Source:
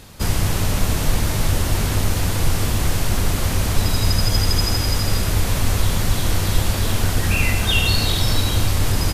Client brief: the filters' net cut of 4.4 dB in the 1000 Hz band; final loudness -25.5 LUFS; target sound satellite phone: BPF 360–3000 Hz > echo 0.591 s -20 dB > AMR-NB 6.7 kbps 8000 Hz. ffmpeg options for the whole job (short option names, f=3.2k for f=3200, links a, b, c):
-af "highpass=360,lowpass=3k,equalizer=f=1k:t=o:g=-5.5,aecho=1:1:591:0.1,volume=8.5dB" -ar 8000 -c:a libopencore_amrnb -b:a 6700